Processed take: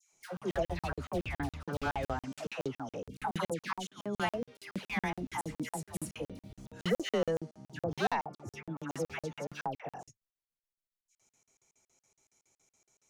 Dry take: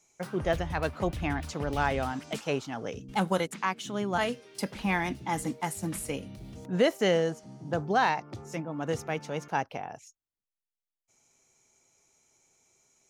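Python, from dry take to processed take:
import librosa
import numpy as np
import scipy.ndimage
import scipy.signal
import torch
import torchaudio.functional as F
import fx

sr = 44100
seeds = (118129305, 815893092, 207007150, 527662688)

y = np.clip(x, -10.0 ** (-20.0 / 20.0), 10.0 ** (-20.0 / 20.0))
y = fx.dispersion(y, sr, late='lows', ms=128.0, hz=1200.0)
y = fx.buffer_crackle(y, sr, first_s=0.37, period_s=0.14, block=2048, kind='zero')
y = y * librosa.db_to_amplitude(-4.0)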